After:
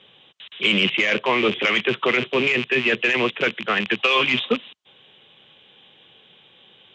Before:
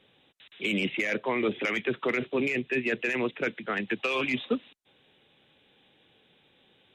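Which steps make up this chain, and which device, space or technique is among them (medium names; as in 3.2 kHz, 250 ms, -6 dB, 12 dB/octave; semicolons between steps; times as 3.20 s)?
car door speaker with a rattle (rattle on loud lows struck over -45 dBFS, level -25 dBFS; cabinet simulation 94–7300 Hz, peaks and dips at 280 Hz -7 dB, 1.1 kHz +5 dB, 3.1 kHz +9 dB); trim +7.5 dB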